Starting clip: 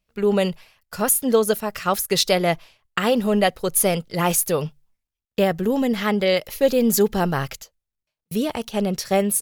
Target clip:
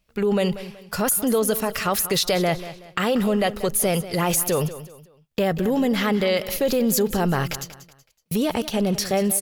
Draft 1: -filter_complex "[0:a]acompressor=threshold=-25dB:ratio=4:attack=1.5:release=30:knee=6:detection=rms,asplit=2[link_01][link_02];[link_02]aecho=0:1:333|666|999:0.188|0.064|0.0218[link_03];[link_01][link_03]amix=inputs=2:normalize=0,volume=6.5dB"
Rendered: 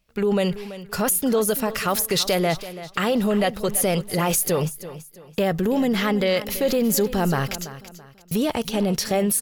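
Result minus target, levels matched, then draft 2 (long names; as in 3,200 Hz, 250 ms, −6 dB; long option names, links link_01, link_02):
echo 146 ms late
-filter_complex "[0:a]acompressor=threshold=-25dB:ratio=4:attack=1.5:release=30:knee=6:detection=rms,asplit=2[link_01][link_02];[link_02]aecho=0:1:187|374|561:0.188|0.064|0.0218[link_03];[link_01][link_03]amix=inputs=2:normalize=0,volume=6.5dB"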